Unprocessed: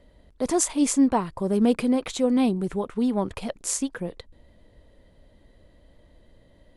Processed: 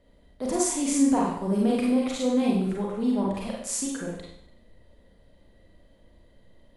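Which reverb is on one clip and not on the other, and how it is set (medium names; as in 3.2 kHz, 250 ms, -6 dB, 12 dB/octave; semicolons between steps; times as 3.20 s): Schroeder reverb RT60 0.71 s, combs from 32 ms, DRR -3.5 dB; trim -6.5 dB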